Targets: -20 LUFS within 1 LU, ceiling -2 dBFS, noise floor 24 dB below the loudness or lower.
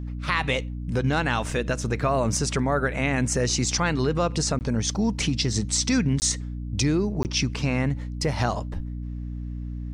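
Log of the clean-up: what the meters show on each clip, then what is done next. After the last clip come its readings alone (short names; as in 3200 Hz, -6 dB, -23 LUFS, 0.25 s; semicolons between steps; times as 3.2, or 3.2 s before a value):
dropouts 3; longest dropout 19 ms; hum 60 Hz; harmonics up to 300 Hz; hum level -30 dBFS; loudness -25.0 LUFS; peak -9.0 dBFS; loudness target -20.0 LUFS
-> interpolate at 4.59/6.2/7.23, 19 ms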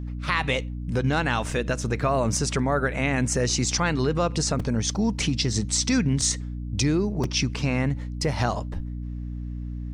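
dropouts 0; hum 60 Hz; harmonics up to 300 Hz; hum level -30 dBFS
-> notches 60/120/180/240/300 Hz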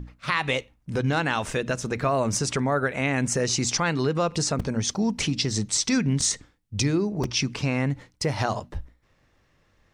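hum none; loudness -25.5 LUFS; peak -9.0 dBFS; loudness target -20.0 LUFS
-> gain +5.5 dB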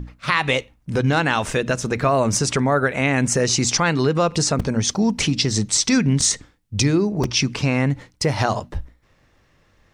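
loudness -20.0 LUFS; peak -3.5 dBFS; noise floor -60 dBFS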